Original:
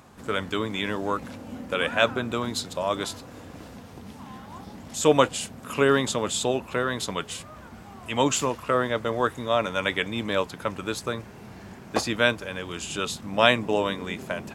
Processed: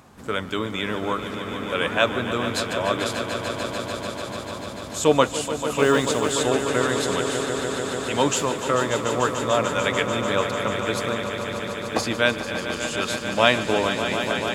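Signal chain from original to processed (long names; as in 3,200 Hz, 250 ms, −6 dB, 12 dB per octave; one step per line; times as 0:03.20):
echo that builds up and dies away 147 ms, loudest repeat 5, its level −11 dB
0:05.73–0:06.33: noise that follows the level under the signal 34 dB
level +1 dB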